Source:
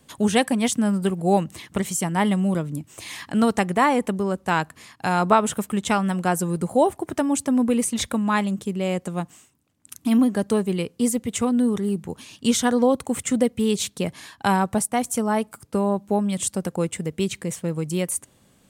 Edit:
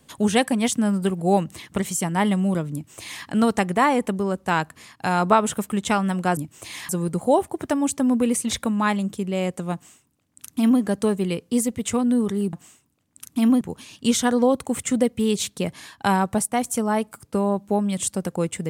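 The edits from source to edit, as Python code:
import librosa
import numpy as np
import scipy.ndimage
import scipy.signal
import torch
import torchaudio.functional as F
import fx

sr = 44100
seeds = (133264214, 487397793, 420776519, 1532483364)

y = fx.edit(x, sr, fx.duplicate(start_s=2.73, length_s=0.52, to_s=6.37),
    fx.duplicate(start_s=9.22, length_s=1.08, to_s=12.01), tone=tone)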